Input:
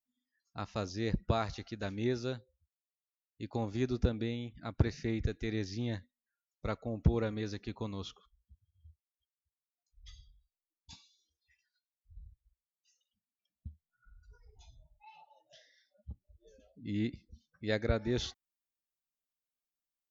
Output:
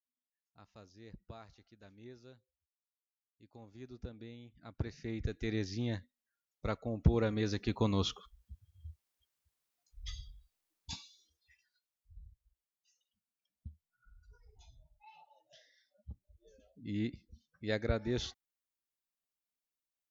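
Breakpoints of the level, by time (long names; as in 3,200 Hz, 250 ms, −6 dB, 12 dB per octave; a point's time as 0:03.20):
0:03.54 −19.5 dB
0:04.96 −8 dB
0:05.48 0 dB
0:07.05 0 dB
0:07.98 +9.5 dB
0:10.93 +9.5 dB
0:12.20 −2 dB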